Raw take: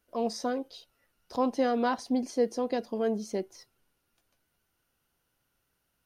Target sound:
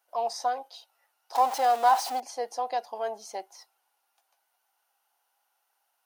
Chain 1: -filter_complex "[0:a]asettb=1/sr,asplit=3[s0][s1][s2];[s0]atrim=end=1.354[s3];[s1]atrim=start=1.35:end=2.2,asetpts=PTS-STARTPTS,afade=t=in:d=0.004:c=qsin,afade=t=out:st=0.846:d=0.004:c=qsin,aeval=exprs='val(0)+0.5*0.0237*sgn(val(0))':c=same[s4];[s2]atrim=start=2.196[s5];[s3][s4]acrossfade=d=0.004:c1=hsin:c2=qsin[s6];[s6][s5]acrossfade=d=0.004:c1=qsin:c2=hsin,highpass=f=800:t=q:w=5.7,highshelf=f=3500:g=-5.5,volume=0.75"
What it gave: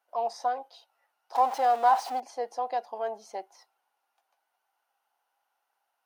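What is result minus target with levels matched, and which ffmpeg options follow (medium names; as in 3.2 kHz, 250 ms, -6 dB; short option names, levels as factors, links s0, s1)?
8 kHz band -8.0 dB
-filter_complex "[0:a]asettb=1/sr,asplit=3[s0][s1][s2];[s0]atrim=end=1.354[s3];[s1]atrim=start=1.35:end=2.2,asetpts=PTS-STARTPTS,afade=t=in:d=0.004:c=qsin,afade=t=out:st=0.846:d=0.004:c=qsin,aeval=exprs='val(0)+0.5*0.0237*sgn(val(0))':c=same[s4];[s2]atrim=start=2.196[s5];[s3][s4]acrossfade=d=0.004:c1=hsin:c2=qsin[s6];[s6][s5]acrossfade=d=0.004:c1=qsin:c2=hsin,highpass=f=800:t=q:w=5.7,highshelf=f=3500:g=5.5,volume=0.75"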